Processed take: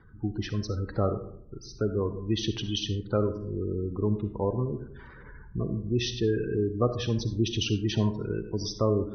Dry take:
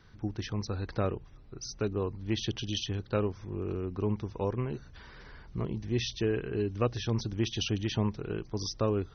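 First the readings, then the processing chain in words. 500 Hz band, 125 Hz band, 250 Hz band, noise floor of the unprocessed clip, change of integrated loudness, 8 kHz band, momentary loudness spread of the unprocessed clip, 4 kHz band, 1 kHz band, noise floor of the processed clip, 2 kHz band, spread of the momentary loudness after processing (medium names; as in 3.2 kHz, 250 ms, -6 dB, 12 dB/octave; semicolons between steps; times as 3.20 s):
+4.0 dB, +3.5 dB, +4.0 dB, -52 dBFS, +3.5 dB, no reading, 12 LU, +3.0 dB, +2.0 dB, -48 dBFS, +0.5 dB, 10 LU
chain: spectral gate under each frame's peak -20 dB strong; level-controlled noise filter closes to 2 kHz, open at -25.5 dBFS; algorithmic reverb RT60 0.68 s, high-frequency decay 0.4×, pre-delay 20 ms, DRR 9 dB; trim +3.5 dB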